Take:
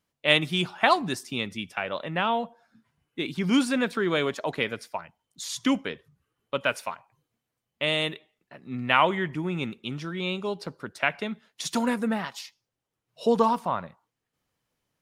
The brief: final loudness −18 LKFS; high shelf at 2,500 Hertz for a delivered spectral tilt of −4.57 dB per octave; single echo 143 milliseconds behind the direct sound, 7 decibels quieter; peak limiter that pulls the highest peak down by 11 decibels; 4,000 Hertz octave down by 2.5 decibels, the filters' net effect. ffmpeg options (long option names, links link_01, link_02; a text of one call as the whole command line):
ffmpeg -i in.wav -af "highshelf=frequency=2500:gain=3,equalizer=frequency=4000:width_type=o:gain=-6,alimiter=limit=-15.5dB:level=0:latency=1,aecho=1:1:143:0.447,volume=11dB" out.wav